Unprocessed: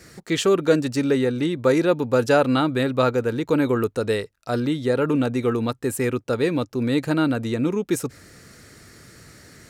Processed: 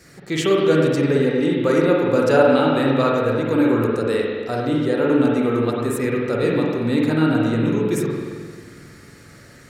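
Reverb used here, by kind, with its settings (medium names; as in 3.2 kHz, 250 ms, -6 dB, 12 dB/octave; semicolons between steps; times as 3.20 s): spring tank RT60 1.8 s, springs 44/51 ms, chirp 60 ms, DRR -3 dB; trim -2 dB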